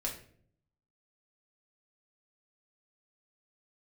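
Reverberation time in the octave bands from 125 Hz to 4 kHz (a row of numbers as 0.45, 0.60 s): 1.0, 0.85, 0.70, 0.45, 0.45, 0.40 s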